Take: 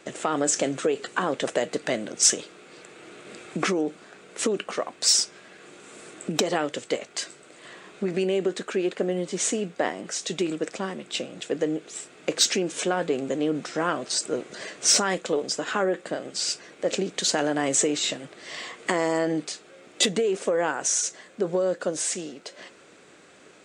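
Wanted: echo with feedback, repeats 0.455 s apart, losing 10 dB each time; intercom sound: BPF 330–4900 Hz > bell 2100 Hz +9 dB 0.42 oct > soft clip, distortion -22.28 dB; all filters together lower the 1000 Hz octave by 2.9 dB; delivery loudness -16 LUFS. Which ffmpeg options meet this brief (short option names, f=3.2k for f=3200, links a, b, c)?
-af "highpass=330,lowpass=4.9k,equalizer=f=1k:t=o:g=-4.5,equalizer=f=2.1k:t=o:w=0.42:g=9,aecho=1:1:455|910|1365|1820:0.316|0.101|0.0324|0.0104,asoftclip=threshold=-14.5dB,volume=13dB"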